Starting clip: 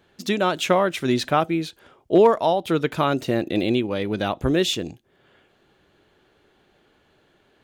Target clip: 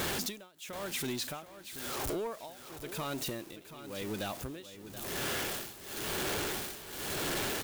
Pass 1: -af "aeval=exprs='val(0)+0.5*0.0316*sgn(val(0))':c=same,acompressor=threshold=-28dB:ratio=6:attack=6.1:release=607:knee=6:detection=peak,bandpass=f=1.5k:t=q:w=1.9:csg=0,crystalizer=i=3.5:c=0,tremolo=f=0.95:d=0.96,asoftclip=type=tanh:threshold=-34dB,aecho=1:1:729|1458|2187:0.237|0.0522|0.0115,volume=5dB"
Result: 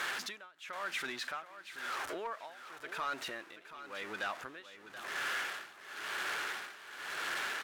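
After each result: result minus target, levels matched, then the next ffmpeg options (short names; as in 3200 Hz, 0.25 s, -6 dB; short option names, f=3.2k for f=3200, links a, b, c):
compressor: peak gain reduction -8 dB; 2000 Hz band +6.5 dB
-af "aeval=exprs='val(0)+0.5*0.0316*sgn(val(0))':c=same,acompressor=threshold=-37.5dB:ratio=6:attack=6.1:release=607:knee=6:detection=peak,bandpass=f=1.5k:t=q:w=1.9:csg=0,crystalizer=i=3.5:c=0,tremolo=f=0.95:d=0.96,asoftclip=type=tanh:threshold=-34dB,aecho=1:1:729|1458|2187:0.237|0.0522|0.0115,volume=5dB"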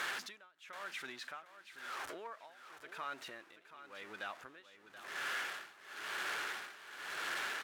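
2000 Hz band +6.5 dB
-af "aeval=exprs='val(0)+0.5*0.0316*sgn(val(0))':c=same,acompressor=threshold=-37.5dB:ratio=6:attack=6.1:release=607:knee=6:detection=peak,crystalizer=i=3.5:c=0,tremolo=f=0.95:d=0.96,asoftclip=type=tanh:threshold=-34dB,aecho=1:1:729|1458|2187:0.237|0.0522|0.0115,volume=5dB"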